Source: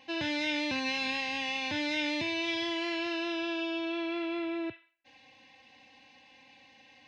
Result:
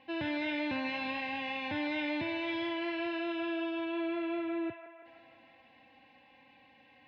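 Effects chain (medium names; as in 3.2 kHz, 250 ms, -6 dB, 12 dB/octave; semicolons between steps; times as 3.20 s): distance through air 370 m; feedback echo behind a band-pass 163 ms, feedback 63%, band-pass 1.1 kHz, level -7 dB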